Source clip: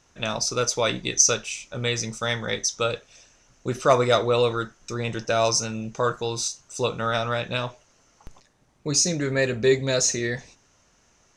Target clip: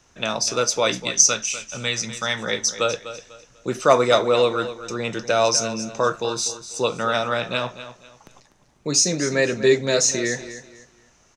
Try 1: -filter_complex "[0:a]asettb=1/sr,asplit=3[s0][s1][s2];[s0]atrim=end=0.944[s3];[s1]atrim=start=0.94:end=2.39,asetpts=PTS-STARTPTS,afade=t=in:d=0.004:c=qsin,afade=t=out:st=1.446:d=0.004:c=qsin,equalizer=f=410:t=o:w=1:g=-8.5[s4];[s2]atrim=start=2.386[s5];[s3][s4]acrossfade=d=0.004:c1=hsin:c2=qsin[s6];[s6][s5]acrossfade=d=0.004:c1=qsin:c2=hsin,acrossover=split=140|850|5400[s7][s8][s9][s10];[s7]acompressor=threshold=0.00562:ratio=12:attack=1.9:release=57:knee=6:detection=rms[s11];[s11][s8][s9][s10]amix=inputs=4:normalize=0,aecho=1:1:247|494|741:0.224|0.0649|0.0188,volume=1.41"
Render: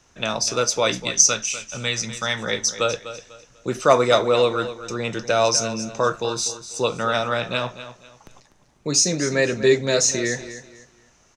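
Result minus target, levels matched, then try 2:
compression: peak gain reduction -7.5 dB
-filter_complex "[0:a]asettb=1/sr,asplit=3[s0][s1][s2];[s0]atrim=end=0.944[s3];[s1]atrim=start=0.94:end=2.39,asetpts=PTS-STARTPTS,afade=t=in:d=0.004:c=qsin,afade=t=out:st=1.446:d=0.004:c=qsin,equalizer=f=410:t=o:w=1:g=-8.5[s4];[s2]atrim=start=2.386[s5];[s3][s4]acrossfade=d=0.004:c1=hsin:c2=qsin[s6];[s6][s5]acrossfade=d=0.004:c1=qsin:c2=hsin,acrossover=split=140|850|5400[s7][s8][s9][s10];[s7]acompressor=threshold=0.00224:ratio=12:attack=1.9:release=57:knee=6:detection=rms[s11];[s11][s8][s9][s10]amix=inputs=4:normalize=0,aecho=1:1:247|494|741:0.224|0.0649|0.0188,volume=1.41"

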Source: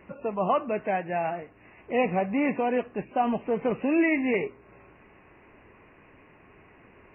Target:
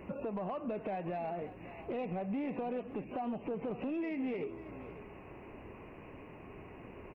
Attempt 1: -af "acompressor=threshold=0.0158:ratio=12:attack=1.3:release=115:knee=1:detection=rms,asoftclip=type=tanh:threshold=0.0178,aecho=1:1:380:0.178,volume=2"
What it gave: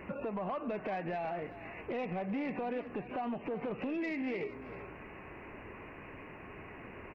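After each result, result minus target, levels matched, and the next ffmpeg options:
2 kHz band +7.5 dB; echo 165 ms early
-af "acompressor=threshold=0.0158:ratio=12:attack=1.3:release=115:knee=1:detection=rms,equalizer=f=1700:w=1.2:g=-10,asoftclip=type=tanh:threshold=0.0178,aecho=1:1:380:0.178,volume=2"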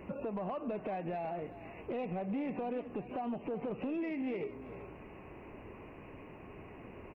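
echo 165 ms early
-af "acompressor=threshold=0.0158:ratio=12:attack=1.3:release=115:knee=1:detection=rms,equalizer=f=1700:w=1.2:g=-10,asoftclip=type=tanh:threshold=0.0178,aecho=1:1:545:0.178,volume=2"

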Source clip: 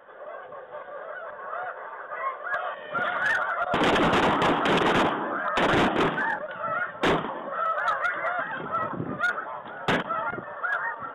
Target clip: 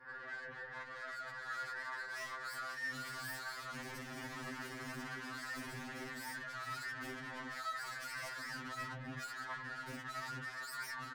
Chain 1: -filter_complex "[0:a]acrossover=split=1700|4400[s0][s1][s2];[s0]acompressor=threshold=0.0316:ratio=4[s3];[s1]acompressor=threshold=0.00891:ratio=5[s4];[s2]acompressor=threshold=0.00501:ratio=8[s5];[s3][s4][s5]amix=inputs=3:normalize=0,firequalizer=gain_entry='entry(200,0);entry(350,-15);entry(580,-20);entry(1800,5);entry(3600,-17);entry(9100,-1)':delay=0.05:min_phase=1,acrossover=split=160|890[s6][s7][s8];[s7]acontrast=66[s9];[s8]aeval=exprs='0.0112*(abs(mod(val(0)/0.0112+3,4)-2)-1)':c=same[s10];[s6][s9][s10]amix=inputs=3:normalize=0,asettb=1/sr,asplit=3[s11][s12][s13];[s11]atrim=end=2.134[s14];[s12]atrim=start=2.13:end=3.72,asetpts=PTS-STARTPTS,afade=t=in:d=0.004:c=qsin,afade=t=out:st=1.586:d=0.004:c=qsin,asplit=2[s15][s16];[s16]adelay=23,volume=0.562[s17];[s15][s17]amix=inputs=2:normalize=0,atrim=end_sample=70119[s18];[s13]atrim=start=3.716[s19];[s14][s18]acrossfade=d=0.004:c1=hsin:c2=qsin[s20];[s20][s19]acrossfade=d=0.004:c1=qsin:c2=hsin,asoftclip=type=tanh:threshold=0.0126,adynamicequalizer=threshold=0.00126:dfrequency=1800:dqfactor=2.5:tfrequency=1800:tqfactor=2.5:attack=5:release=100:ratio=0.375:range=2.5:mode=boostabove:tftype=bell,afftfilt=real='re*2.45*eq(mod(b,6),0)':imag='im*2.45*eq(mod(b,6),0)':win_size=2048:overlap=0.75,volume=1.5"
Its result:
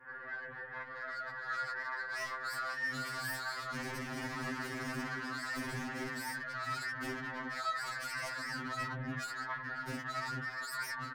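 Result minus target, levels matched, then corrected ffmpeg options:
saturation: distortion -4 dB
-filter_complex "[0:a]acrossover=split=1700|4400[s0][s1][s2];[s0]acompressor=threshold=0.0316:ratio=4[s3];[s1]acompressor=threshold=0.00891:ratio=5[s4];[s2]acompressor=threshold=0.00501:ratio=8[s5];[s3][s4][s5]amix=inputs=3:normalize=0,firequalizer=gain_entry='entry(200,0);entry(350,-15);entry(580,-20);entry(1800,5);entry(3600,-17);entry(9100,-1)':delay=0.05:min_phase=1,acrossover=split=160|890[s6][s7][s8];[s7]acontrast=66[s9];[s8]aeval=exprs='0.0112*(abs(mod(val(0)/0.0112+3,4)-2)-1)':c=same[s10];[s6][s9][s10]amix=inputs=3:normalize=0,asettb=1/sr,asplit=3[s11][s12][s13];[s11]atrim=end=2.134[s14];[s12]atrim=start=2.13:end=3.72,asetpts=PTS-STARTPTS,afade=t=in:d=0.004:c=qsin,afade=t=out:st=1.586:d=0.004:c=qsin,asplit=2[s15][s16];[s16]adelay=23,volume=0.562[s17];[s15][s17]amix=inputs=2:normalize=0,atrim=end_sample=70119[s18];[s13]atrim=start=3.716[s19];[s14][s18]acrossfade=d=0.004:c1=hsin:c2=qsin[s20];[s20][s19]acrossfade=d=0.004:c1=qsin:c2=hsin,asoftclip=type=tanh:threshold=0.00501,adynamicequalizer=threshold=0.00126:dfrequency=1800:dqfactor=2.5:tfrequency=1800:tqfactor=2.5:attack=5:release=100:ratio=0.375:range=2.5:mode=boostabove:tftype=bell,afftfilt=real='re*2.45*eq(mod(b,6),0)':imag='im*2.45*eq(mod(b,6),0)':win_size=2048:overlap=0.75,volume=1.5"

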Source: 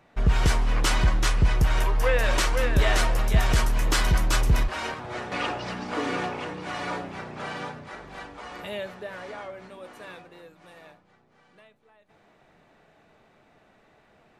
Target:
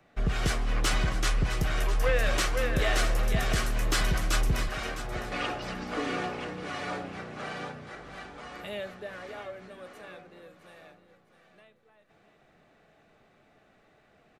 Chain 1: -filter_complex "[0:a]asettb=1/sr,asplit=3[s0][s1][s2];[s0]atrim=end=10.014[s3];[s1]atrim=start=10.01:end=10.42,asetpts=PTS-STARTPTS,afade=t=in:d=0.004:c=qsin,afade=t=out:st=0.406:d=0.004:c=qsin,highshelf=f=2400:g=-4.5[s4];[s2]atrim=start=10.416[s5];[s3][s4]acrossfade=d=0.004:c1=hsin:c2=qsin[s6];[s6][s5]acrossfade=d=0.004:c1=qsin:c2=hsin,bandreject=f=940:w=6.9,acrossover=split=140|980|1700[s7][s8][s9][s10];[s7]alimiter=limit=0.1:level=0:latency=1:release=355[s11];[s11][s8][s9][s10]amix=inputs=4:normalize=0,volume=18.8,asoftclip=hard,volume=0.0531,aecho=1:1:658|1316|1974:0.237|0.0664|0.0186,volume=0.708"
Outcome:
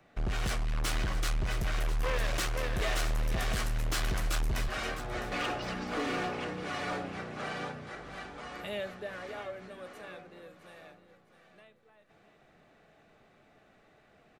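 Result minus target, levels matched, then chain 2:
overload inside the chain: distortion +24 dB
-filter_complex "[0:a]asettb=1/sr,asplit=3[s0][s1][s2];[s0]atrim=end=10.014[s3];[s1]atrim=start=10.01:end=10.42,asetpts=PTS-STARTPTS,afade=t=in:d=0.004:c=qsin,afade=t=out:st=0.406:d=0.004:c=qsin,highshelf=f=2400:g=-4.5[s4];[s2]atrim=start=10.416[s5];[s3][s4]acrossfade=d=0.004:c1=hsin:c2=qsin[s6];[s6][s5]acrossfade=d=0.004:c1=qsin:c2=hsin,bandreject=f=940:w=6.9,acrossover=split=140|980|1700[s7][s8][s9][s10];[s7]alimiter=limit=0.1:level=0:latency=1:release=355[s11];[s11][s8][s9][s10]amix=inputs=4:normalize=0,volume=5.01,asoftclip=hard,volume=0.2,aecho=1:1:658|1316|1974:0.237|0.0664|0.0186,volume=0.708"

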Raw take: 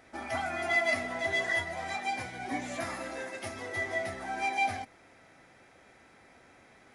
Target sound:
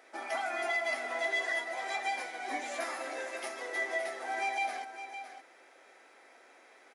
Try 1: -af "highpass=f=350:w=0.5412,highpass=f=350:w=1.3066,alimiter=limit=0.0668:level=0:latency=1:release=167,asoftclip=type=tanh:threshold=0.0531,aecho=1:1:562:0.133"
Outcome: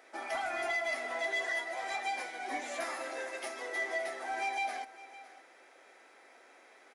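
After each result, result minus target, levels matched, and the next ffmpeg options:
saturation: distortion +21 dB; echo-to-direct -7 dB
-af "highpass=f=350:w=0.5412,highpass=f=350:w=1.3066,alimiter=limit=0.0668:level=0:latency=1:release=167,asoftclip=type=tanh:threshold=0.2,aecho=1:1:562:0.133"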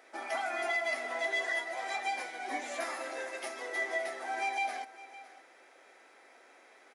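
echo-to-direct -7 dB
-af "highpass=f=350:w=0.5412,highpass=f=350:w=1.3066,alimiter=limit=0.0668:level=0:latency=1:release=167,asoftclip=type=tanh:threshold=0.2,aecho=1:1:562:0.299"

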